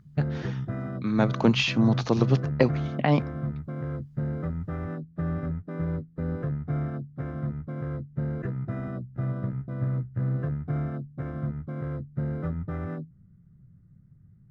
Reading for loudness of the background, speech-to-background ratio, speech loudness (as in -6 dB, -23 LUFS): -32.0 LUFS, 6.5 dB, -25.5 LUFS